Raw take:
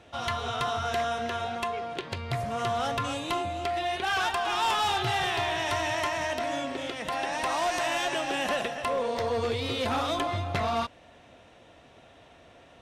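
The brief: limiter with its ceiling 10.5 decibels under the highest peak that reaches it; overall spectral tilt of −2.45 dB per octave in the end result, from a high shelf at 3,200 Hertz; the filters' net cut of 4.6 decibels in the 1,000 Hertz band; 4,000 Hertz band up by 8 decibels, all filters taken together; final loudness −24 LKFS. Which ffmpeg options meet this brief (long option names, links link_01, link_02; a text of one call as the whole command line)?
ffmpeg -i in.wav -af "equalizer=frequency=1000:width_type=o:gain=-8,highshelf=frequency=3200:gain=7.5,equalizer=frequency=4000:width_type=o:gain=5.5,volume=6dB,alimiter=limit=-15dB:level=0:latency=1" out.wav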